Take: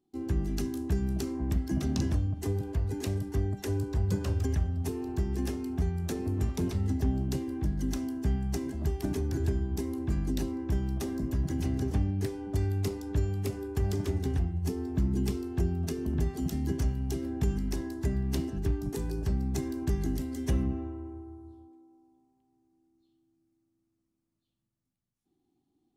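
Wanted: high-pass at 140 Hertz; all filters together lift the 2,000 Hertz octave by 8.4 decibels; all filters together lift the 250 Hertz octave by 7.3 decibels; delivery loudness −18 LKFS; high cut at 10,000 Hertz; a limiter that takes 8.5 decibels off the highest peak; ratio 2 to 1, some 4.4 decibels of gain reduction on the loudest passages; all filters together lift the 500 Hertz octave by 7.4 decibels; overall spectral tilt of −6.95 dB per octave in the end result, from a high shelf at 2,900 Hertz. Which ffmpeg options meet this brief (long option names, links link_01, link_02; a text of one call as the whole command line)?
ffmpeg -i in.wav -af "highpass=140,lowpass=10000,equalizer=frequency=250:width_type=o:gain=7.5,equalizer=frequency=500:width_type=o:gain=6.5,equalizer=frequency=2000:width_type=o:gain=7.5,highshelf=frequency=2900:gain=7,acompressor=threshold=-29dB:ratio=2,volume=14dB,alimiter=limit=-9dB:level=0:latency=1" out.wav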